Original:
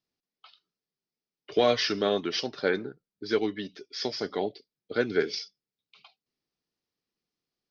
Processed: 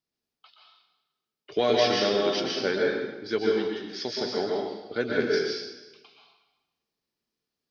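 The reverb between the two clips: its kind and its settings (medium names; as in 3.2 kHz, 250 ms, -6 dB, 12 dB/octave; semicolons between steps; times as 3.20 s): plate-style reverb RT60 1.1 s, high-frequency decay 0.9×, pre-delay 110 ms, DRR -2.5 dB; trim -2 dB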